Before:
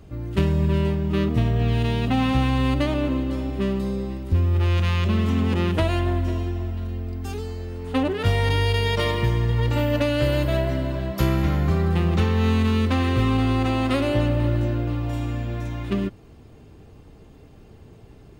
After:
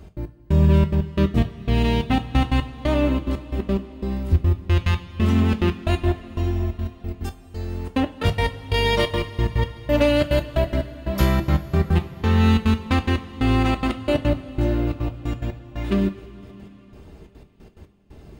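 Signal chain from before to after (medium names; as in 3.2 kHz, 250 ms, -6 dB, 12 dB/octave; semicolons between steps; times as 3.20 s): trance gate "x.x...xxxx.x.." 179 bpm -60 dB; two-slope reverb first 0.24 s, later 4.3 s, from -19 dB, DRR 5.5 dB; trim +2 dB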